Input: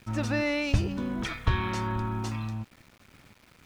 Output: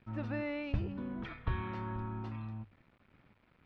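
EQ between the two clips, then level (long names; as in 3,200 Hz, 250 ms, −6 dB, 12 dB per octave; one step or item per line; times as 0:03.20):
high-frequency loss of the air 400 metres
mains-hum notches 50/100 Hz
−8.0 dB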